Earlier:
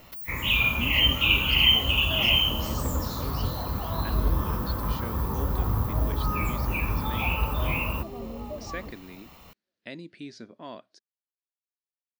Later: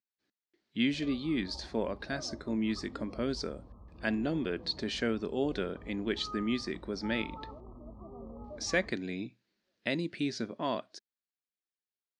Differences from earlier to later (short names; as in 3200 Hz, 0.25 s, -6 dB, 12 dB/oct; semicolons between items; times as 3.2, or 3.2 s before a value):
speech +8.0 dB; first sound: muted; second sound -9.0 dB